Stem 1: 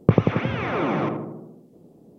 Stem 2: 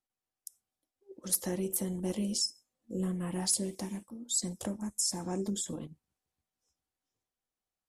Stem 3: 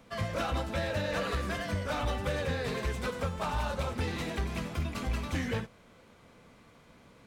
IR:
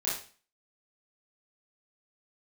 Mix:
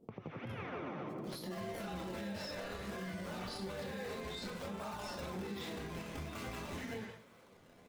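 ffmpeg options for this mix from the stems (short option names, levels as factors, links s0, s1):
-filter_complex "[0:a]agate=range=0.447:threshold=0.00355:ratio=16:detection=peak,acompressor=threshold=0.0447:ratio=4,volume=0.531,asplit=2[s0][s1];[s1]volume=0.282[s2];[1:a]highshelf=f=5500:t=q:w=3:g=-12,volume=0.562,asplit=2[s3][s4];[s4]volume=0.562[s5];[2:a]highpass=f=170:p=1,adelay=1400,volume=0.841,asplit=3[s6][s7][s8];[s7]volume=0.398[s9];[s8]volume=0.224[s10];[s3][s6]amix=inputs=2:normalize=0,acrusher=samples=22:mix=1:aa=0.000001:lfo=1:lforange=35.2:lforate=1.2,acompressor=threshold=0.0141:ratio=6,volume=1[s11];[3:a]atrim=start_sample=2205[s12];[s5][s9]amix=inputs=2:normalize=0[s13];[s13][s12]afir=irnorm=-1:irlink=0[s14];[s2][s10]amix=inputs=2:normalize=0,aecho=0:1:170:1[s15];[s0][s11][s14][s15]amix=inputs=4:normalize=0,flanger=delay=4.3:depth=7.4:regen=70:speed=0.58:shape=sinusoidal,alimiter=level_in=3.16:limit=0.0631:level=0:latency=1:release=102,volume=0.316"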